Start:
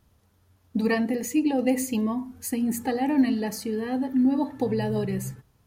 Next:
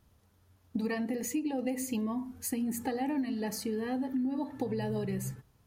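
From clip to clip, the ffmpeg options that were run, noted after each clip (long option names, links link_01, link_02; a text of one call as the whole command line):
ffmpeg -i in.wav -af "acompressor=threshold=-27dB:ratio=6,volume=-2.5dB" out.wav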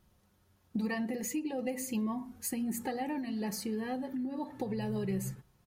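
ffmpeg -i in.wav -af "aecho=1:1:5.5:0.44,volume=-1.5dB" out.wav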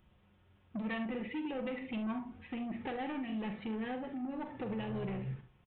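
ffmpeg -i in.wav -af "aresample=8000,asoftclip=type=tanh:threshold=-35.5dB,aresample=44100,aexciter=amount=1.4:drive=4.9:freq=2200,aecho=1:1:45|69:0.335|0.237,volume=1dB" out.wav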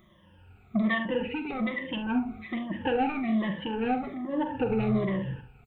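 ffmpeg -i in.wav -af "afftfilt=real='re*pow(10,19/40*sin(2*PI*(1.2*log(max(b,1)*sr/1024/100)/log(2)-(-1.2)*(pts-256)/sr)))':imag='im*pow(10,19/40*sin(2*PI*(1.2*log(max(b,1)*sr/1024/100)/log(2)-(-1.2)*(pts-256)/sr)))':win_size=1024:overlap=0.75,volume=6.5dB" out.wav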